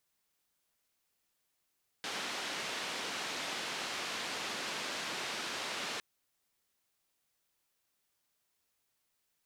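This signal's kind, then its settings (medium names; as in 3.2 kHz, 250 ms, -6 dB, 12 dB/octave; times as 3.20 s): noise band 210–4100 Hz, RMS -39 dBFS 3.96 s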